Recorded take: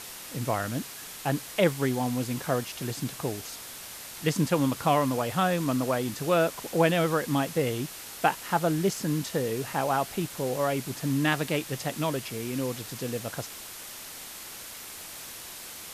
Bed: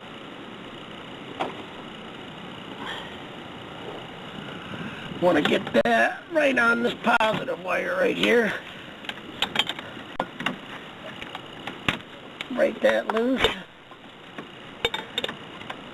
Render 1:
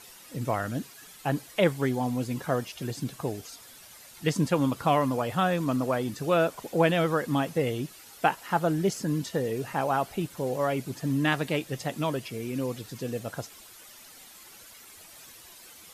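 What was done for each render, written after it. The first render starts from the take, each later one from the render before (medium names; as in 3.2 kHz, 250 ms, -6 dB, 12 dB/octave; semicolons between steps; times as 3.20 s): noise reduction 11 dB, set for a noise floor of -42 dBFS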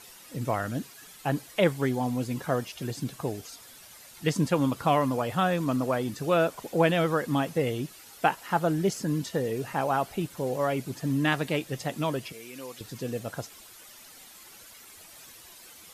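12.32–12.81 s: high-pass 1.2 kHz 6 dB/octave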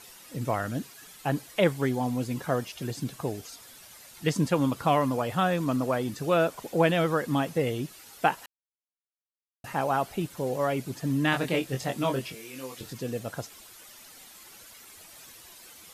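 8.46–9.64 s: mute; 11.31–12.93 s: doubling 23 ms -4 dB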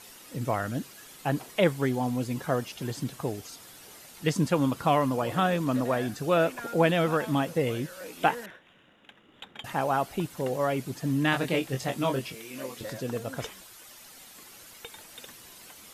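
add bed -20 dB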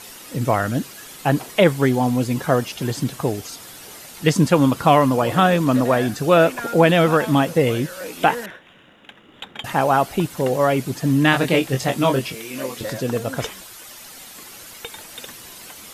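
trim +9.5 dB; peak limiter -2 dBFS, peak gain reduction 3 dB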